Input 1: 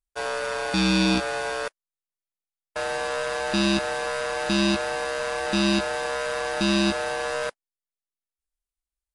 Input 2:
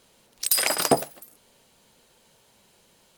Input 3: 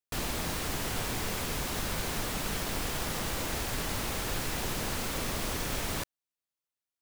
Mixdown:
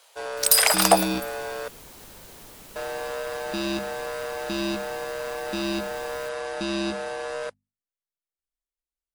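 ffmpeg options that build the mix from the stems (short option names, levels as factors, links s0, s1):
-filter_complex "[0:a]bandreject=f=50:t=h:w=6,bandreject=f=100:t=h:w=6,bandreject=f=150:t=h:w=6,bandreject=f=200:t=h:w=6,bandreject=f=250:t=h:w=6,volume=0.447[s0];[1:a]highpass=f=670:w=0.5412,highpass=f=670:w=1.3066,acontrast=36,volume=0.944[s1];[2:a]highshelf=f=7400:g=9.5,adelay=250,volume=0.15[s2];[s0][s1][s2]amix=inputs=3:normalize=0,equalizer=f=450:w=0.89:g=5"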